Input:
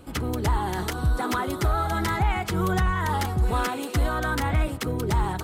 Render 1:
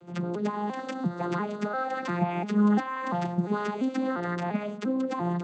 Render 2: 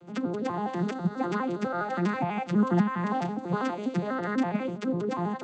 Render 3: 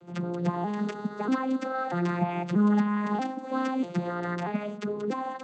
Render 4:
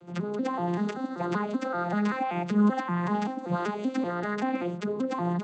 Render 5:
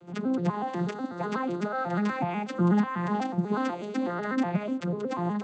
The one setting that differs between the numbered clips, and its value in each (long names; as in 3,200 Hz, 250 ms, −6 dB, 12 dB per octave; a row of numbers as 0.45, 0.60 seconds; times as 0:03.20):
vocoder with an arpeggio as carrier, a note every: 346, 82, 637, 192, 123 milliseconds